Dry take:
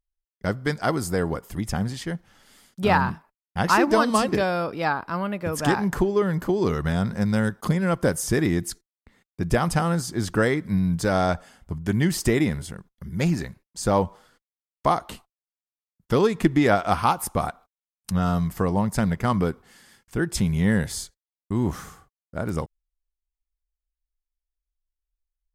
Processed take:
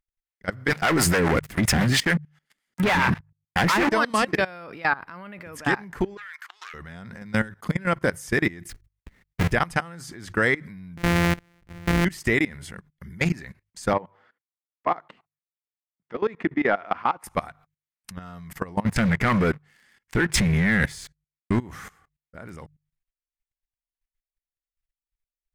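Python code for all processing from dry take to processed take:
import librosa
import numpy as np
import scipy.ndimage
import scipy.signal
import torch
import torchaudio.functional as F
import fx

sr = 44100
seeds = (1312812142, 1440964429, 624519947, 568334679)

y = fx.chain(x, sr, fx.highpass(hz=54.0, slope=6),
    fx.leveller(passes=5),
    fx.harmonic_tremolo(hz=7.4, depth_pct=70, crossover_hz=490.0), at=(0.68, 3.89))
y = fx.chain(y, sr, fx.self_delay(depth_ms=0.17),
    fx.highpass(hz=1300.0, slope=24),
    fx.high_shelf(hz=11000.0, db=-4.5), at=(6.17, 6.74))
y = fx.chain(y, sr, fx.halfwave_hold(),
    fx.low_shelf(hz=150.0, db=11.0), at=(8.69, 9.52))
y = fx.chain(y, sr, fx.sample_sort(block=256),
    fx.low_shelf(hz=330.0, db=8.0), at=(10.97, 12.05))
y = fx.chain(y, sr, fx.highpass(hz=250.0, slope=12),
    fx.clip_hard(threshold_db=-10.0),
    fx.spacing_loss(db_at_10k=32), at=(13.93, 17.24))
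y = fx.chain(y, sr, fx.high_shelf(hz=11000.0, db=-7.5),
    fx.leveller(passes=3), at=(18.86, 21.59))
y = fx.peak_eq(y, sr, hz=2000.0, db=11.0, octaves=1.1)
y = fx.hum_notches(y, sr, base_hz=50, count=3)
y = fx.level_steps(y, sr, step_db=20)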